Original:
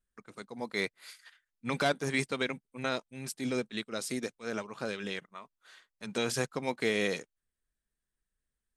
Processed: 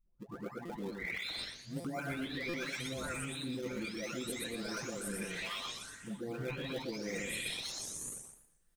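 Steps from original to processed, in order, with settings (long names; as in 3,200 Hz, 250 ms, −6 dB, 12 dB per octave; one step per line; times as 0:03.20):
every frequency bin delayed by itself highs late, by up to 997 ms
single-tap delay 124 ms −6.5 dB
shaped tremolo triangle 3 Hz, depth 40%
in parallel at −11 dB: sample-and-hold swept by an LFO 35×, swing 160% 1.4 Hz
on the sum: dynamic equaliser 850 Hz, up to −6 dB, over −49 dBFS, Q 0.83
reversed playback
downward compressor 6 to 1, threshold −50 dBFS, peak gain reduction 18 dB
reversed playback
buffer that repeats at 0:00.65/0:01.80/0:02.49, samples 256, times 7
feedback echo with a swinging delay time 118 ms, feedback 35%, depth 177 cents, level −11 dB
level +12 dB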